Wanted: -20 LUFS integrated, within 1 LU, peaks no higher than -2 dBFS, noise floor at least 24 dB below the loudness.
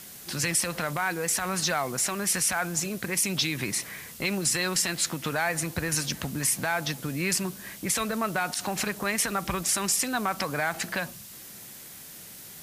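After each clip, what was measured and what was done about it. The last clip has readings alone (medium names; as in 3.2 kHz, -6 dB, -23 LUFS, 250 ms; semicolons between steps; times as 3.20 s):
noise floor -45 dBFS; noise floor target -51 dBFS; loudness -27.0 LUFS; peak level -13.0 dBFS; loudness target -20.0 LUFS
-> noise reduction 6 dB, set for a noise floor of -45 dBFS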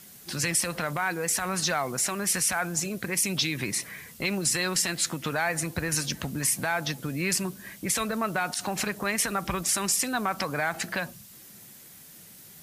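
noise floor -49 dBFS; noise floor target -52 dBFS
-> noise reduction 6 dB, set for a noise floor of -49 dBFS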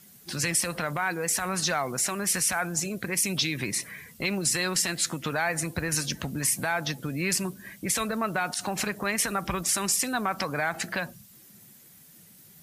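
noise floor -53 dBFS; loudness -27.5 LUFS; peak level -13.5 dBFS; loudness target -20.0 LUFS
-> trim +7.5 dB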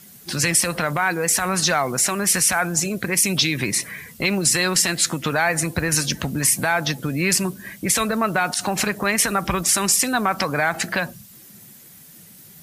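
loudness -20.0 LUFS; peak level -6.0 dBFS; noise floor -46 dBFS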